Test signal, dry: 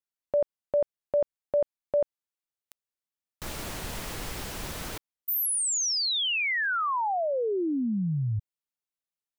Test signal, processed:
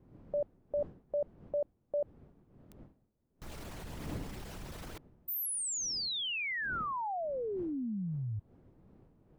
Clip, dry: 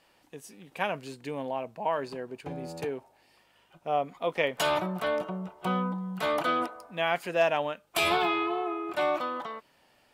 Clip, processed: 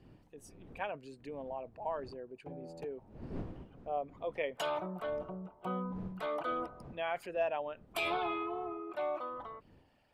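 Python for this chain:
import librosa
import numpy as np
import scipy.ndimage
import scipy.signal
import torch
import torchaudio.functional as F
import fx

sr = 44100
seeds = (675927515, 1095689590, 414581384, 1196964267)

y = fx.envelope_sharpen(x, sr, power=1.5)
y = fx.dmg_wind(y, sr, seeds[0], corner_hz=260.0, level_db=-45.0)
y = F.gain(torch.from_numpy(y), -8.5).numpy()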